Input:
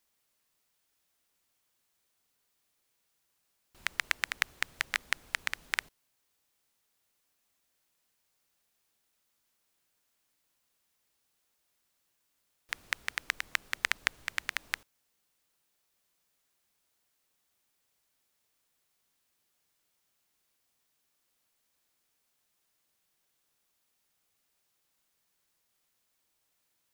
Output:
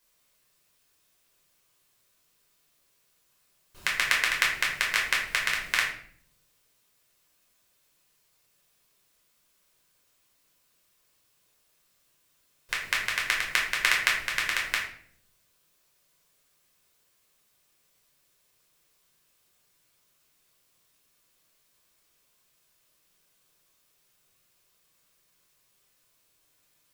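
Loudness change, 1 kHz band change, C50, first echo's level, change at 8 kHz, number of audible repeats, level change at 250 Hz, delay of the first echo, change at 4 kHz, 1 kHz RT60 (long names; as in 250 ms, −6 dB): +8.0 dB, +8.0 dB, 5.0 dB, no echo audible, +8.5 dB, no echo audible, +8.5 dB, no echo audible, +8.5 dB, 0.50 s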